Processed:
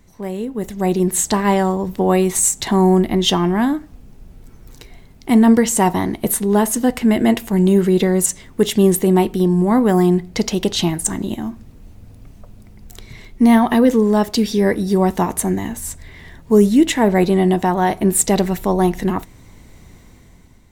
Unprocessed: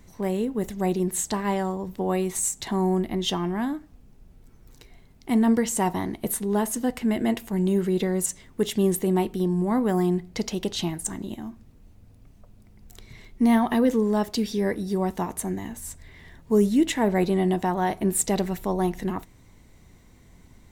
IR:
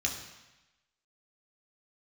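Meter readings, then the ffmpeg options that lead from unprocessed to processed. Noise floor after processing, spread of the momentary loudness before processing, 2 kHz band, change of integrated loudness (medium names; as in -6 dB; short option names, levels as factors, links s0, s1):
-45 dBFS, 10 LU, +8.5 dB, +9.0 dB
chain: -af "dynaudnorm=f=340:g=5:m=3.76"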